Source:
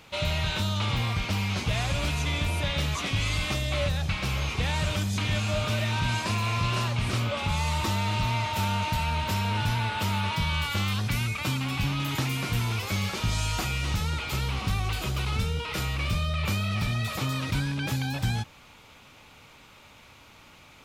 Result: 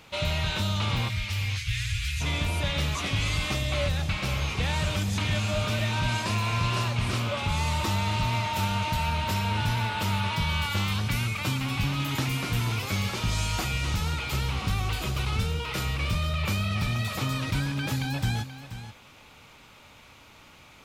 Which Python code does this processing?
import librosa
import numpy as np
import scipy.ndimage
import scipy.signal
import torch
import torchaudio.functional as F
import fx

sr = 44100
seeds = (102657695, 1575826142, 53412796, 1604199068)

y = fx.ellip_bandstop(x, sr, low_hz=110.0, high_hz=1800.0, order=3, stop_db=60, at=(1.08, 2.2), fade=0.02)
y = y + 10.0 ** (-12.5 / 20.0) * np.pad(y, (int(480 * sr / 1000.0), 0))[:len(y)]